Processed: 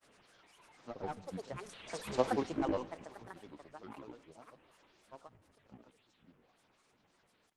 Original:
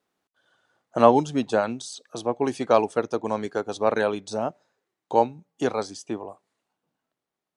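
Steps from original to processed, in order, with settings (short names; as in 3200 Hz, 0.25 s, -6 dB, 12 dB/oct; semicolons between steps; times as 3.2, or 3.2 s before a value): delta modulation 32 kbps, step -30 dBFS; Doppler pass-by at 2.16, 20 m/s, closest 2.8 m; grains, pitch spread up and down by 12 st; Schroeder reverb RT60 1.7 s, combs from 33 ms, DRR 17.5 dB; gain -2.5 dB; Opus 24 kbps 48000 Hz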